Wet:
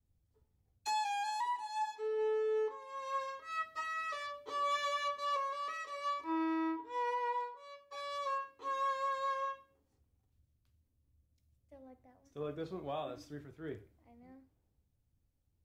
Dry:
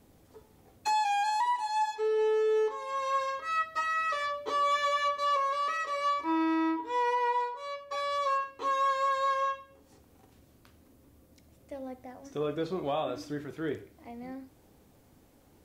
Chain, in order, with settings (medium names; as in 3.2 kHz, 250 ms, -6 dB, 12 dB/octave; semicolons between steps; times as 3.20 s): three bands expanded up and down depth 70%; trim -8 dB